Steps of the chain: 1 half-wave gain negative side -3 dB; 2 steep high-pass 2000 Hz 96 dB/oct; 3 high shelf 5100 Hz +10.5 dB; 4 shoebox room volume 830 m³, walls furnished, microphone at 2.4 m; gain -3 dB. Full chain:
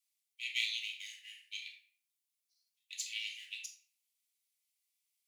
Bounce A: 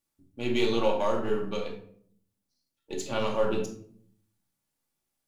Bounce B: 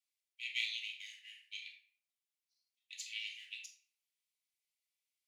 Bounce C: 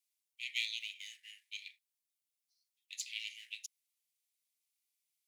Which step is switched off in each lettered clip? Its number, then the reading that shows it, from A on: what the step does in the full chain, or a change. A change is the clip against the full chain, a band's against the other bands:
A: 2, crest factor change -7.0 dB; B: 3, momentary loudness spread change +1 LU; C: 4, echo-to-direct -0.5 dB to none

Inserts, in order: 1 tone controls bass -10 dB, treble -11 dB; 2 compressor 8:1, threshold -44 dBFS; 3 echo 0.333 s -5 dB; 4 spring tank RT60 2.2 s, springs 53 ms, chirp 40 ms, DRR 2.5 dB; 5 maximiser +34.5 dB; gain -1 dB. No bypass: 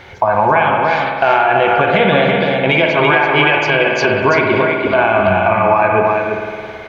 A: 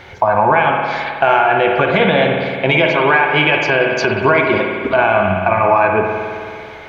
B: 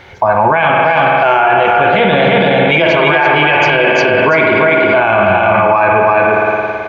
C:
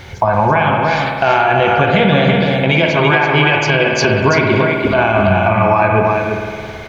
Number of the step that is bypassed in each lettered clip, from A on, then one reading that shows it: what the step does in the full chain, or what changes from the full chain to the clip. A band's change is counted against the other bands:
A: 3, momentary loudness spread change +2 LU; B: 2, mean gain reduction 11.0 dB; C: 1, 125 Hz band +7.5 dB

